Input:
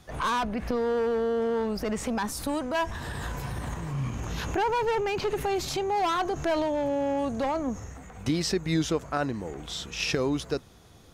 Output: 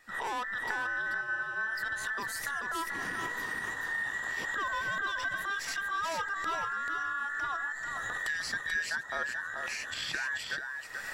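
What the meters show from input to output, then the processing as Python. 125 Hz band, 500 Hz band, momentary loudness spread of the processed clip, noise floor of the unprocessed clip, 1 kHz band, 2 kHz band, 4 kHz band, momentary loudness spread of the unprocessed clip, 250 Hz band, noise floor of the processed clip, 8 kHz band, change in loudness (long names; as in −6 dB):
−21.0 dB, −19.0 dB, 3 LU, −51 dBFS, −5.5 dB, +7.5 dB, −4.5 dB, 8 LU, −21.0 dB, −41 dBFS, −4.0 dB, −4.5 dB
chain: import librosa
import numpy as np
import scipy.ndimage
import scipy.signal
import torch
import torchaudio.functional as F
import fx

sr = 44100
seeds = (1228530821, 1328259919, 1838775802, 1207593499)

p1 = fx.band_invert(x, sr, width_hz=2000)
p2 = fx.recorder_agc(p1, sr, target_db=-20.0, rise_db_per_s=44.0, max_gain_db=30)
p3 = p2 + fx.echo_single(p2, sr, ms=436, db=-5.0, dry=0)
y = F.gain(torch.from_numpy(p3), -8.5).numpy()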